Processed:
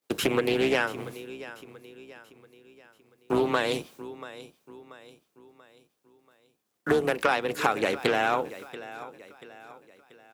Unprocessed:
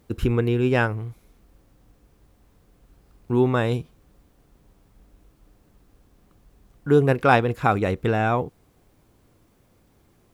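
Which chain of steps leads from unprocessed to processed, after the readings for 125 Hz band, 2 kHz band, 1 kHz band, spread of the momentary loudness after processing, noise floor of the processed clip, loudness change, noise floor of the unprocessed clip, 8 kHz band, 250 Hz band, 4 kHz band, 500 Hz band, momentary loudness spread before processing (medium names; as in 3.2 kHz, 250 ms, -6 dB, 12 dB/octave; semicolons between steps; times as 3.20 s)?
-16.5 dB, -1.0 dB, -4.0 dB, 18 LU, -76 dBFS, -5.0 dB, -61 dBFS, no reading, -6.5 dB, +5.0 dB, -3.5 dB, 13 LU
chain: octave divider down 2 oct, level +1 dB; high-pass 320 Hz 12 dB/octave; expander -50 dBFS; treble shelf 2.1 kHz +10.5 dB; in parallel at -3 dB: peak limiter -8 dBFS, peak gain reduction 9.5 dB; on the sum: compression 10:1, threshold -20 dBFS, peak gain reduction 14 dB; frequency shift +13 Hz; feedback delay 685 ms, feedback 44%, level -16 dB; loudspeaker Doppler distortion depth 0.3 ms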